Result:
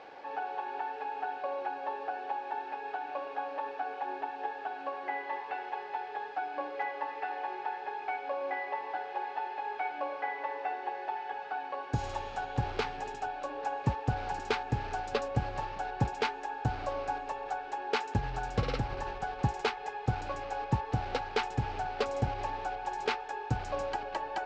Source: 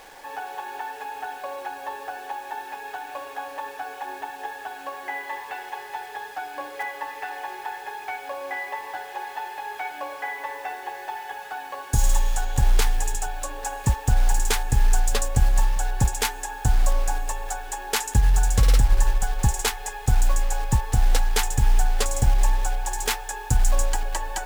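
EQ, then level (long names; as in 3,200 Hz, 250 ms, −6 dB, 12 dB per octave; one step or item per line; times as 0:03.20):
loudspeaker in its box 160–4,500 Hz, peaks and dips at 200 Hz −5 dB, 1,000 Hz −5 dB, 1,800 Hz −7 dB, 3,400 Hz −5 dB
high-shelf EQ 3,400 Hz −11.5 dB
0.0 dB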